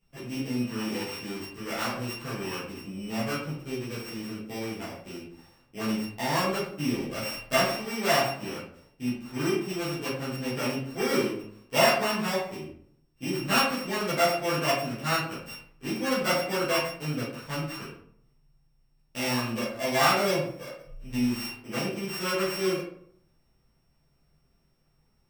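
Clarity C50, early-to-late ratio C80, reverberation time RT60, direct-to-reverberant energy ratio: 4.0 dB, 7.0 dB, 0.65 s, -12.0 dB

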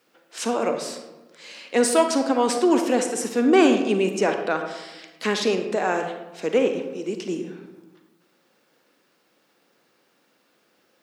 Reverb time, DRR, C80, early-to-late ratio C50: 1.1 s, 5.5 dB, 9.0 dB, 6.5 dB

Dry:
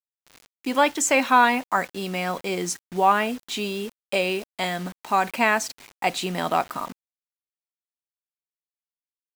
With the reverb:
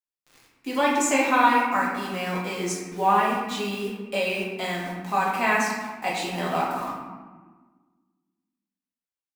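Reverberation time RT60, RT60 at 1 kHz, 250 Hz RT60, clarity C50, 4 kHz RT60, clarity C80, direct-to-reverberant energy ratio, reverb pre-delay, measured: 1.4 s, 1.4 s, 2.0 s, 1.0 dB, 0.80 s, 3.5 dB, -5.0 dB, 4 ms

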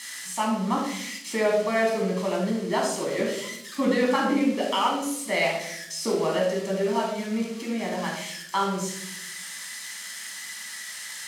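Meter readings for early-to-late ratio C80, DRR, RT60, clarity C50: 7.0 dB, -2.5 dB, 0.75 s, 3.0 dB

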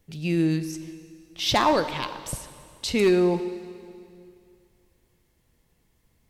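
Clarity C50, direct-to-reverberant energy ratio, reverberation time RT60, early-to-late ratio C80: 11.5 dB, 10.5 dB, 2.4 s, 12.5 dB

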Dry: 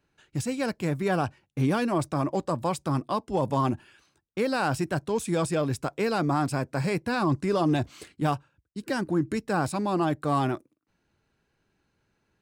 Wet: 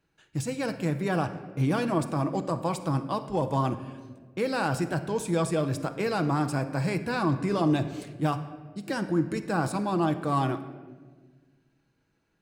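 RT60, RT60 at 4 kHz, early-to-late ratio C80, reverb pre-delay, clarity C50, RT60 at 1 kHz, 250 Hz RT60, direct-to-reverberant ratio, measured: 1.5 s, 0.95 s, 13.5 dB, 6 ms, 11.0 dB, 1.2 s, 2.1 s, 7.0 dB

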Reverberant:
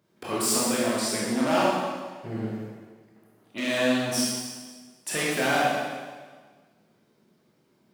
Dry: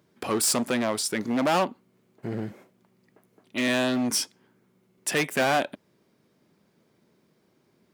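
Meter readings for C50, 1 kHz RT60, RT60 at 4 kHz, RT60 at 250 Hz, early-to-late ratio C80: -1.5 dB, 1.5 s, 1.4 s, 1.5 s, 1.0 dB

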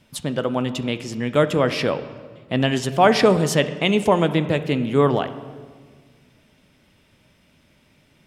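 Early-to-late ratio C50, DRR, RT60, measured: 12.5 dB, 11.0 dB, 1.7 s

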